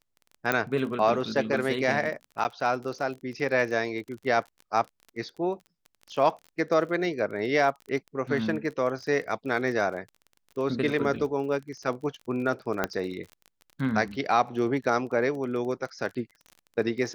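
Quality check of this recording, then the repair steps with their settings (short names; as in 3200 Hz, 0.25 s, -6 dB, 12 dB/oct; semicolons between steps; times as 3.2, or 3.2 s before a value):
crackle 31/s -36 dBFS
0.52 pop -10 dBFS
2.44–2.45 gap 8.4 ms
12.84 pop -11 dBFS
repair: de-click; interpolate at 2.44, 8.4 ms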